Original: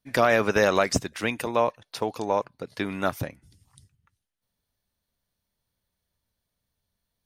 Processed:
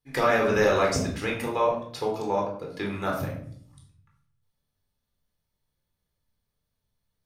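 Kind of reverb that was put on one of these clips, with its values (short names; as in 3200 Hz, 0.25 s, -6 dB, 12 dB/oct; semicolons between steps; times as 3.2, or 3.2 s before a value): shoebox room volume 1000 m³, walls furnished, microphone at 4 m; gain -6.5 dB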